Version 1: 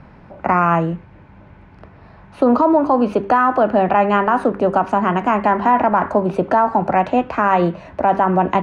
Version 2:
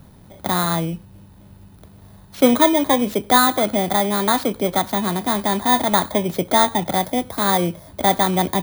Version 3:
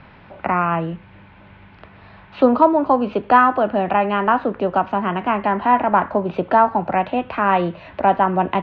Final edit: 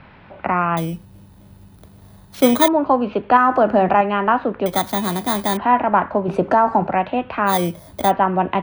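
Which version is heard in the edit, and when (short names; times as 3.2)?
3
0.77–2.68 from 2
3.37–4.01 from 1
4.66–5.57 from 2
6.28–6.87 from 1
7.51–8.07 from 2, crossfade 0.10 s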